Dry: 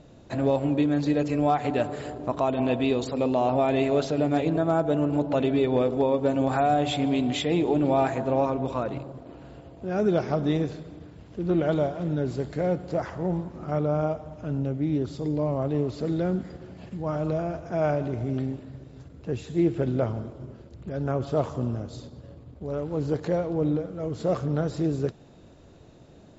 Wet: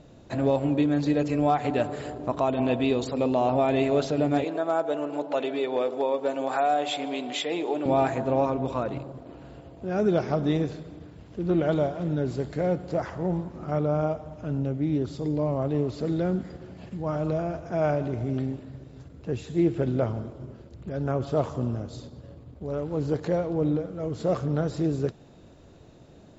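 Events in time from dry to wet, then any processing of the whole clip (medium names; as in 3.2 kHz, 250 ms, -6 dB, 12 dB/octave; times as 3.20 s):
4.44–7.86 s: high-pass 440 Hz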